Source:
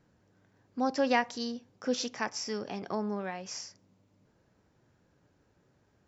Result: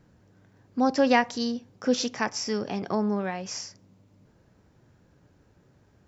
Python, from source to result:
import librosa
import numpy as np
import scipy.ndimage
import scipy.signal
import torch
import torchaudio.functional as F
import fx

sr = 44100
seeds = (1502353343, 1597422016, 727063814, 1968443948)

y = fx.low_shelf(x, sr, hz=220.0, db=6.0)
y = y * librosa.db_to_amplitude(5.0)